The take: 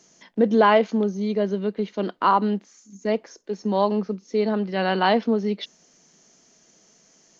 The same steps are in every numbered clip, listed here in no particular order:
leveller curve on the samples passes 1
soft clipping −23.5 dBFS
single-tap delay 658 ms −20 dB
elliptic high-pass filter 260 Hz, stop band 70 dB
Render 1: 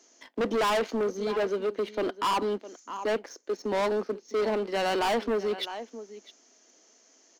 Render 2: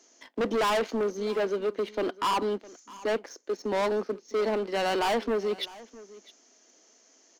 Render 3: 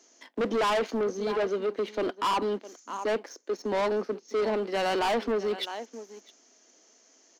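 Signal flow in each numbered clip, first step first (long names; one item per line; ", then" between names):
elliptic high-pass filter, then leveller curve on the samples, then single-tap delay, then soft clipping
elliptic high-pass filter, then leveller curve on the samples, then soft clipping, then single-tap delay
single-tap delay, then leveller curve on the samples, then elliptic high-pass filter, then soft clipping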